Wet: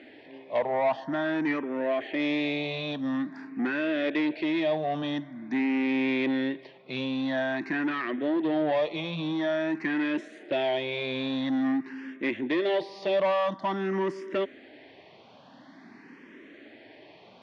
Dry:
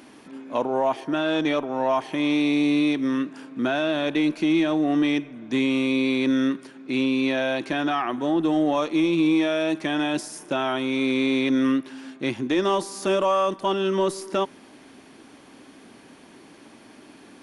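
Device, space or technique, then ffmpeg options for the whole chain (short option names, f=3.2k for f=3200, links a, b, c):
barber-pole phaser into a guitar amplifier: -filter_complex "[0:a]asplit=2[a][b];[b]afreqshift=0.48[c];[a][c]amix=inputs=2:normalize=1,asoftclip=type=tanh:threshold=-22.5dB,highpass=97,equalizer=f=630:t=q:w=4:g=5,equalizer=f=1.3k:t=q:w=4:g=-5,equalizer=f=1.9k:t=q:w=4:g=8,lowpass=f=4.3k:w=0.5412,lowpass=f=4.3k:w=1.3066"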